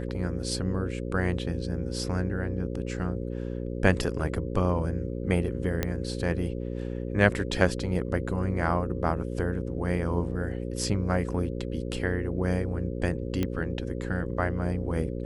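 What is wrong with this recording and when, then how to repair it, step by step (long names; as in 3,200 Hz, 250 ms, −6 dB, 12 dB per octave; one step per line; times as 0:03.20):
mains buzz 60 Hz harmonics 9 −33 dBFS
0:05.83: click −12 dBFS
0:13.43: click −15 dBFS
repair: click removal
hum removal 60 Hz, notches 9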